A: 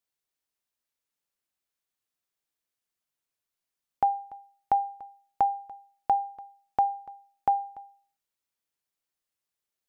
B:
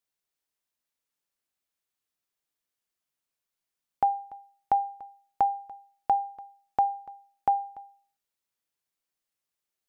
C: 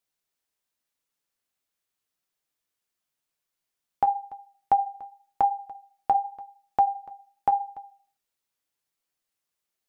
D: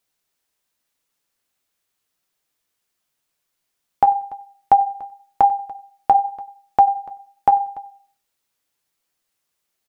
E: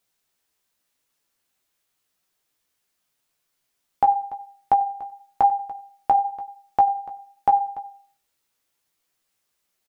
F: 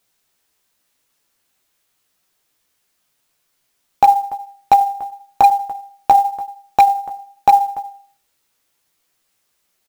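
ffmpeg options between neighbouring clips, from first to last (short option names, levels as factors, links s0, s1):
-af "equalizer=f=83:w=3.1:g=-3.5"
-af "flanger=delay=5:depth=8.9:regen=-49:speed=0.89:shape=triangular,volume=2.11"
-af "aecho=1:1:94|188:0.0794|0.0207,volume=2.51"
-filter_complex "[0:a]alimiter=limit=0.335:level=0:latency=1:release=477,asplit=2[s0][s1];[s1]adelay=16,volume=0.447[s2];[s0][s2]amix=inputs=2:normalize=0"
-af "acrusher=bits=7:mode=log:mix=0:aa=0.000001,aeval=exprs='0.299*(abs(mod(val(0)/0.299+3,4)-2)-1)':c=same,volume=2.37"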